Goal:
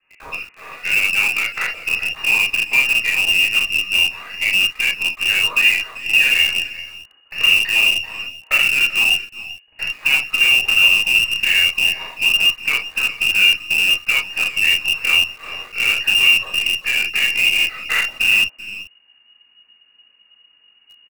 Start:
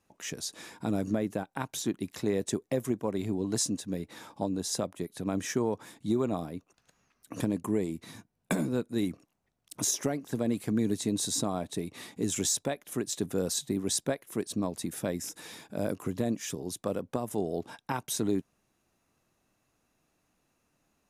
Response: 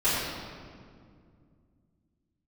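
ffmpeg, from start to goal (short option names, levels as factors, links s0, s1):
-filter_complex "[0:a]asubboost=boost=12:cutoff=72,acrossover=split=1500[s0][s1];[s1]acompressor=threshold=0.00708:ratio=6[s2];[s0][s2]amix=inputs=2:normalize=0,lowpass=f=2500:t=q:w=0.5098,lowpass=f=2500:t=q:w=0.6013,lowpass=f=2500:t=q:w=0.9,lowpass=f=2500:t=q:w=2.563,afreqshift=-2900,asplit=2[s3][s4];[s4]adelay=390,highpass=300,lowpass=3400,asoftclip=type=hard:threshold=0.0596,volume=0.224[s5];[s3][s5]amix=inputs=2:normalize=0[s6];[1:a]atrim=start_sample=2205,atrim=end_sample=3969[s7];[s6][s7]afir=irnorm=-1:irlink=0,asplit=2[s8][s9];[s9]acrusher=bits=4:dc=4:mix=0:aa=0.000001,volume=0.631[s10];[s8][s10]amix=inputs=2:normalize=0"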